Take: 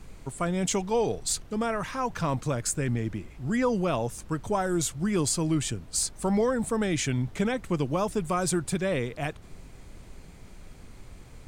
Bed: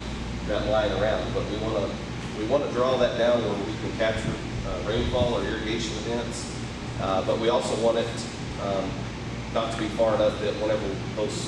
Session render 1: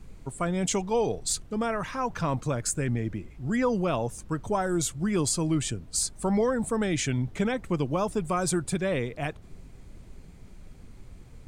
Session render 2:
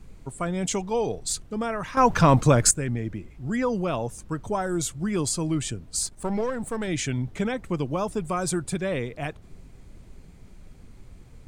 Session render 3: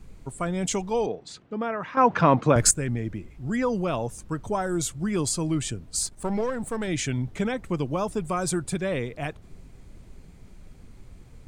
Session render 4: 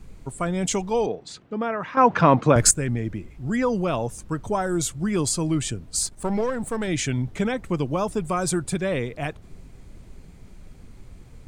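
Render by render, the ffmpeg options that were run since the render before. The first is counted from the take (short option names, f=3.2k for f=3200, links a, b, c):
-af "afftdn=nr=6:nf=-48"
-filter_complex "[0:a]asplit=3[a][b][c];[a]afade=t=out:st=6.05:d=0.02[d];[b]aeval=exprs='if(lt(val(0),0),0.447*val(0),val(0))':c=same,afade=t=in:st=6.05:d=0.02,afade=t=out:st=6.87:d=0.02[e];[c]afade=t=in:st=6.87:d=0.02[f];[d][e][f]amix=inputs=3:normalize=0,asplit=3[g][h][i];[g]atrim=end=1.972[j];[h]atrim=start=1.968:end=2.712,asetpts=PTS-STARTPTS,volume=11dB[k];[i]atrim=start=2.708[l];[j][k]acrossfade=d=0.004:c1=hsin:c2=hsin[m];[m][l]acrossfade=d=0.004:c1=hsin:c2=hsin"
-filter_complex "[0:a]asettb=1/sr,asplit=3[a][b][c];[a]atrim=end=1.064[d];[b]atrim=start=1.06:end=2.56,asetpts=PTS-STARTPTS,afade=t=in:d=0.004:c=qsin,afade=t=out:st=1.496:d=0.004:c=qsin,highpass=180,lowpass=2.8k[e];[c]atrim=start=2.556[f];[d][e]acrossfade=d=0.004:c1=hsin:c2=qsin[g];[g][f]acrossfade=d=0.004:c1=qsin:c2=hsin"
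-af "volume=2.5dB"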